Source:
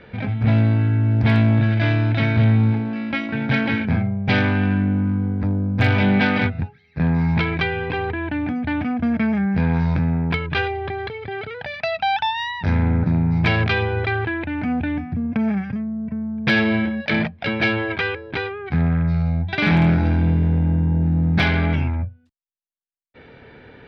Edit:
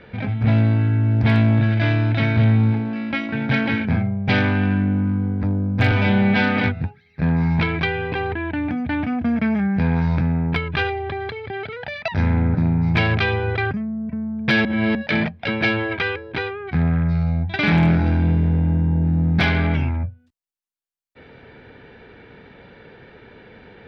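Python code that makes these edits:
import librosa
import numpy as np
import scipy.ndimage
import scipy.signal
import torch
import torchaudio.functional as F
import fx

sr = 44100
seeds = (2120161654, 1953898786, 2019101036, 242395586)

y = fx.edit(x, sr, fx.stretch_span(start_s=5.91, length_s=0.44, factor=1.5),
    fx.cut(start_s=11.86, length_s=0.71),
    fx.cut(start_s=14.2, length_s=1.5),
    fx.reverse_span(start_s=16.64, length_s=0.3), tone=tone)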